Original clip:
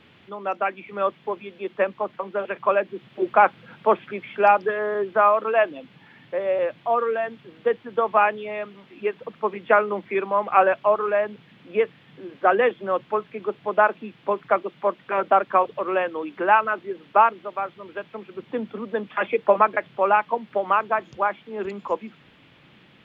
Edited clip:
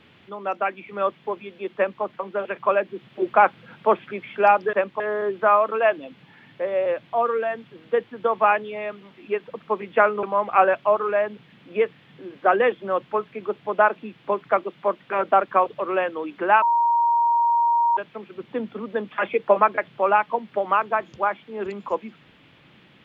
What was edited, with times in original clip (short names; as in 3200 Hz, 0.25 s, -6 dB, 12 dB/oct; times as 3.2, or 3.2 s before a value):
1.76–2.03 copy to 4.73
9.96–10.22 cut
16.61–17.96 bleep 939 Hz -16 dBFS